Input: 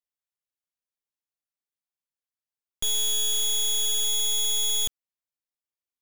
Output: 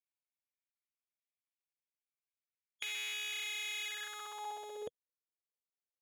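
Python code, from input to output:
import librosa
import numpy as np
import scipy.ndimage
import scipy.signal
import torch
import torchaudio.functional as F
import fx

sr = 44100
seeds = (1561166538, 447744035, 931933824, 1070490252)

y = fx.spec_gate(x, sr, threshold_db=-10, keep='weak')
y = fx.filter_sweep_bandpass(y, sr, from_hz=2300.0, to_hz=480.0, start_s=3.84, end_s=4.83, q=5.2)
y = y * librosa.db_to_amplitude(11.5)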